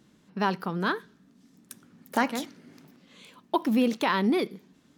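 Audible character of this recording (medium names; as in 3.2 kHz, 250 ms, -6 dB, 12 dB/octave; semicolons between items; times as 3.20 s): noise floor -62 dBFS; spectral tilt -4.0 dB/octave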